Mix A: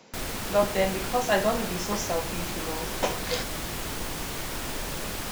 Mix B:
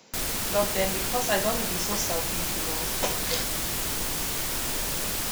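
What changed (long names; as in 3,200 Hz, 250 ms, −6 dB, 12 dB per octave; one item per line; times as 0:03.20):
speech −3.0 dB
master: add high-shelf EQ 3,900 Hz +9 dB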